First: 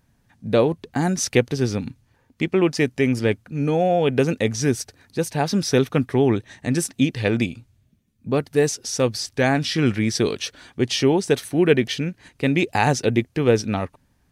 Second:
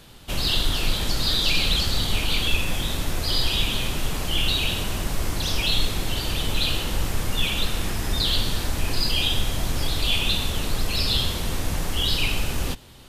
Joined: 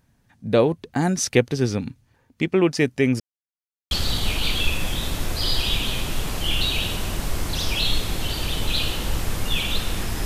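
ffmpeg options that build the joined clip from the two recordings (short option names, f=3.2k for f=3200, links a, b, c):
-filter_complex "[0:a]apad=whole_dur=10.25,atrim=end=10.25,asplit=2[a][b];[a]atrim=end=3.2,asetpts=PTS-STARTPTS,afade=t=out:st=3.196:d=0.004:c=hsin[c];[b]atrim=start=3.2:end=3.91,asetpts=PTS-STARTPTS,volume=0[d];[1:a]atrim=start=1.78:end=8.12,asetpts=PTS-STARTPTS,afade=t=in:d=0.004:c=hsin[e];[c][d][e]concat=n=3:v=0:a=1"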